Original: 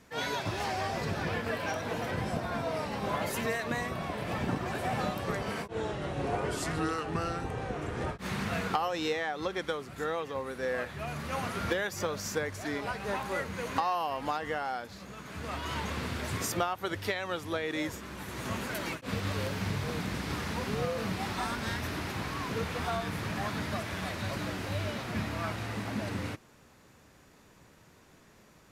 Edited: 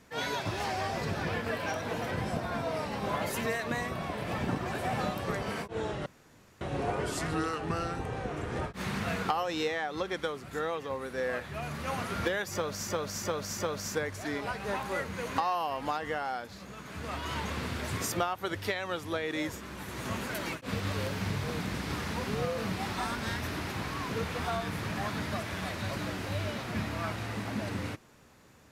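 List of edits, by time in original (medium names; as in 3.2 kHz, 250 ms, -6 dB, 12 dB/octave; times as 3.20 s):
6.06 s: insert room tone 0.55 s
11.98–12.33 s: loop, 4 plays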